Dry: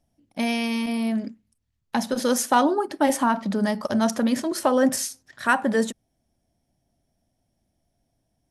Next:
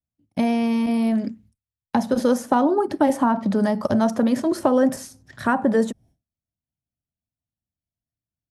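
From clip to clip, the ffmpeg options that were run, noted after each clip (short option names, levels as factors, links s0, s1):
-filter_complex "[0:a]agate=range=0.0224:threshold=0.00282:ratio=3:detection=peak,equalizer=f=98:w=0.47:g=14,acrossover=split=370|1300[s0][s1][s2];[s0]acompressor=threshold=0.0447:ratio=4[s3];[s1]acompressor=threshold=0.0891:ratio=4[s4];[s2]acompressor=threshold=0.00794:ratio=4[s5];[s3][s4][s5]amix=inputs=3:normalize=0,volume=1.5"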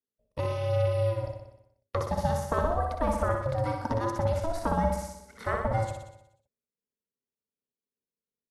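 -filter_complex "[0:a]asplit=2[s0][s1];[s1]aecho=0:1:61|122|183|244|305|366|427|488|549:0.596|0.357|0.214|0.129|0.0772|0.0463|0.0278|0.0167|0.01[s2];[s0][s2]amix=inputs=2:normalize=0,aeval=exprs='val(0)*sin(2*PI*330*n/s)':c=same,volume=0.447"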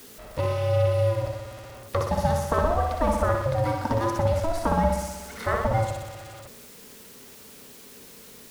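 -af "aeval=exprs='val(0)+0.5*0.01*sgn(val(0))':c=same,volume=1.5"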